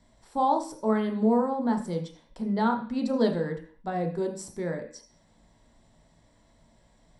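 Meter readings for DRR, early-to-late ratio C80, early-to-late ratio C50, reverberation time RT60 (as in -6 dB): 2.5 dB, 14.0 dB, 9.5 dB, 0.45 s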